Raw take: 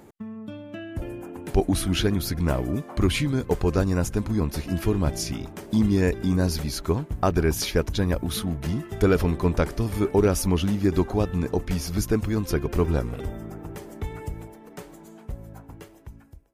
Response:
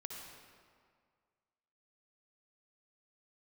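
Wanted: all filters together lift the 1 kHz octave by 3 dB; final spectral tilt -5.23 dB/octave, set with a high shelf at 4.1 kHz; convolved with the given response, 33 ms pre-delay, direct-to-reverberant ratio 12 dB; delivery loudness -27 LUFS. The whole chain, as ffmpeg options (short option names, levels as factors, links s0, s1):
-filter_complex "[0:a]equalizer=f=1000:t=o:g=3.5,highshelf=f=4100:g=6,asplit=2[s0][s1];[1:a]atrim=start_sample=2205,adelay=33[s2];[s1][s2]afir=irnorm=-1:irlink=0,volume=0.335[s3];[s0][s3]amix=inputs=2:normalize=0,volume=0.708"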